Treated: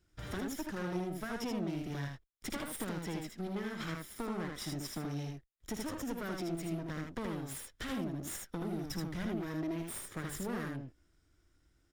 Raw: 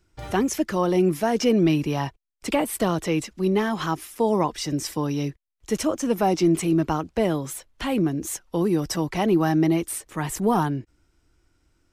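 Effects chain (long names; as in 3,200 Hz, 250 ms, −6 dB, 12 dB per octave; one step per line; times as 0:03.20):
lower of the sound and its delayed copy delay 0.57 ms
0:08.88–0:09.40: low-shelf EQ 190 Hz +8 dB
downward compressor 4 to 1, threshold −32 dBFS, peak gain reduction 15 dB
on a send: ambience of single reflections 55 ms −14 dB, 78 ms −3.5 dB
on the sum: level −6.5 dB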